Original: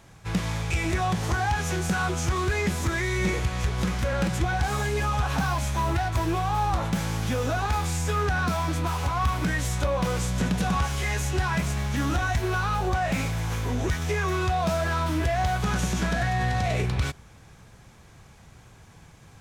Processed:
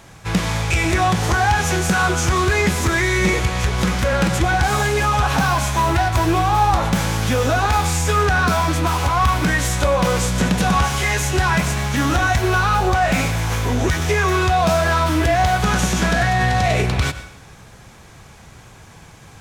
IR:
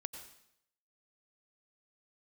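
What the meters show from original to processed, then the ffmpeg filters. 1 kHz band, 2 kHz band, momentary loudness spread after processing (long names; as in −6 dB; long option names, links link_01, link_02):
+9.5 dB, +10.0 dB, 3 LU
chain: -filter_complex "[0:a]asplit=2[link_01][link_02];[1:a]atrim=start_sample=2205,lowshelf=frequency=190:gain=-10[link_03];[link_02][link_03]afir=irnorm=-1:irlink=0,volume=3.5dB[link_04];[link_01][link_04]amix=inputs=2:normalize=0,volume=3.5dB"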